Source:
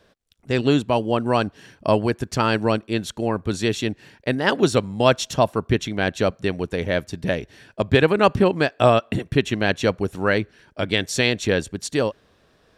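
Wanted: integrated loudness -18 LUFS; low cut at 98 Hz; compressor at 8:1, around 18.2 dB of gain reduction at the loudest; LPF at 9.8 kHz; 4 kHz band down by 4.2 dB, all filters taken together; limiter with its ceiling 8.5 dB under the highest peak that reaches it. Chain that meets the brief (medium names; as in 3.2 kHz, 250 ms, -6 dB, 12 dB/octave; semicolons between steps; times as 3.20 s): high-pass 98 Hz; low-pass 9.8 kHz; peaking EQ 4 kHz -5.5 dB; compression 8:1, threshold -31 dBFS; trim +21 dB; peak limiter -5 dBFS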